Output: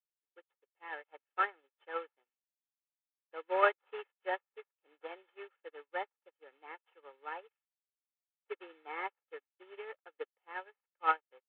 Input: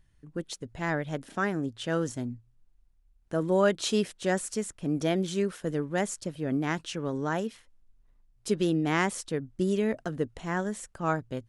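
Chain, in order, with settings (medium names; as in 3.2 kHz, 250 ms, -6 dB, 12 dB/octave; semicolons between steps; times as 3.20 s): CVSD coder 16 kbps; dynamic bell 1.3 kHz, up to +4 dB, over -44 dBFS, Q 1; high-pass 520 Hz 24 dB/octave; comb 2.3 ms, depth 73%; upward expansion 2.5:1, over -50 dBFS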